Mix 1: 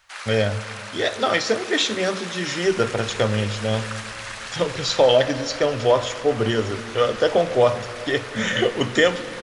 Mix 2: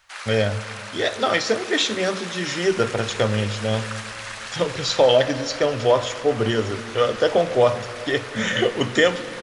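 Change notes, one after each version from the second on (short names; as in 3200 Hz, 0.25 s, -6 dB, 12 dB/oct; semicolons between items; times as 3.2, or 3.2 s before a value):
second sound -4.0 dB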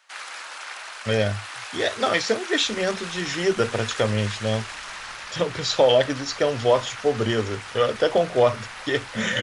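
speech: entry +0.80 s; reverb: off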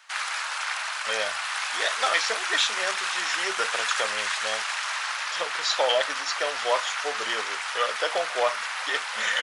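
first sound +7.0 dB; master: add Chebyshev high-pass 930 Hz, order 2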